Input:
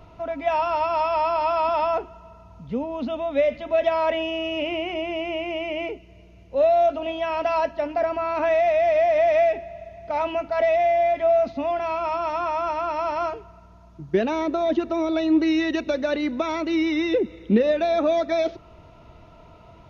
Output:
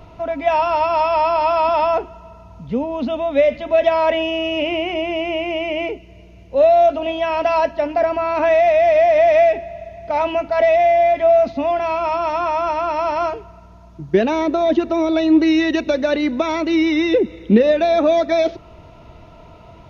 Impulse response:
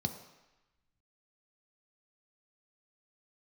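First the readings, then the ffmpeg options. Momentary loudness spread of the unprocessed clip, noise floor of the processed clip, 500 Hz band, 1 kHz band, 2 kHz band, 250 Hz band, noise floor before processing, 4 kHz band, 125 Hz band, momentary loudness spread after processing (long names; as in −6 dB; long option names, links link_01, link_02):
9 LU, −43 dBFS, +6.0 dB, +5.5 dB, +6.0 dB, +6.0 dB, −49 dBFS, +6.0 dB, can't be measured, 10 LU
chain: -af "equalizer=frequency=1300:width=4.1:gain=-2.5,volume=6dB"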